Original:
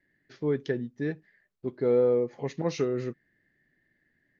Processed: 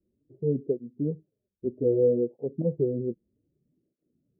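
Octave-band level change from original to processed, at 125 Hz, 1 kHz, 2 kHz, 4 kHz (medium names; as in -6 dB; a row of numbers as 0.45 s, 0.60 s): +3.0 dB, under -15 dB, under -40 dB, under -35 dB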